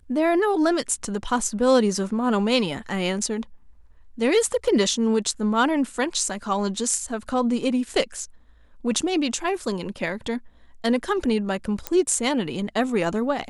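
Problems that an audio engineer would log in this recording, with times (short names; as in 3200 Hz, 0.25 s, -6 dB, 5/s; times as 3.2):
11.87 pop -9 dBFS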